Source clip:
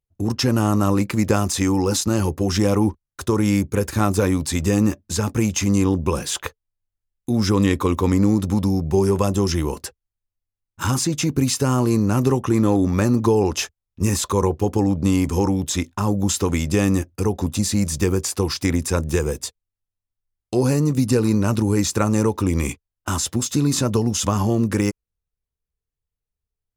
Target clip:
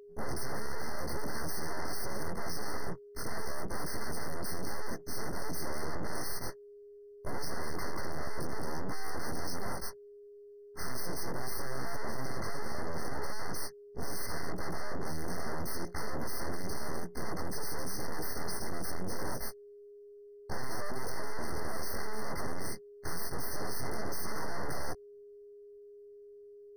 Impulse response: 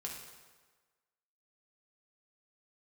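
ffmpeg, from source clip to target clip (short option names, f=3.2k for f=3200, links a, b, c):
-af "afftfilt=real='re':imag='-im':win_size=2048:overlap=0.75,aeval=exprs='abs(val(0))':c=same,aeval=exprs='(tanh(44.7*val(0)+0.3)-tanh(0.3))/44.7':c=same,aeval=exprs='val(0)+0.00112*sin(2*PI*410*n/s)':c=same,afftfilt=real='re*eq(mod(floor(b*sr/1024/2100),2),0)':imag='im*eq(mod(floor(b*sr/1024/2100),2),0)':win_size=1024:overlap=0.75,volume=9.5dB"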